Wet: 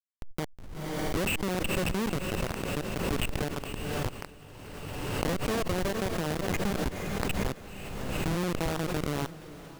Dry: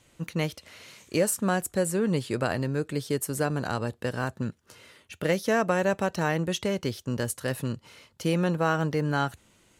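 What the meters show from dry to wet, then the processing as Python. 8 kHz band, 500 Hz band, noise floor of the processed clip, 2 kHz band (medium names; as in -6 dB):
-5.0 dB, -5.5 dB, -49 dBFS, -3.5 dB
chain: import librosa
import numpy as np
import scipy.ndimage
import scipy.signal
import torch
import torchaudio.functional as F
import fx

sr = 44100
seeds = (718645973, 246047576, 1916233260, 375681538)

p1 = fx.freq_compress(x, sr, knee_hz=1800.0, ratio=4.0)
p2 = fx.schmitt(p1, sr, flips_db=-22.5)
p3 = p2 + fx.echo_diffused(p2, sr, ms=495, feedback_pct=60, wet_db=-15, dry=0)
y = fx.pre_swell(p3, sr, db_per_s=26.0)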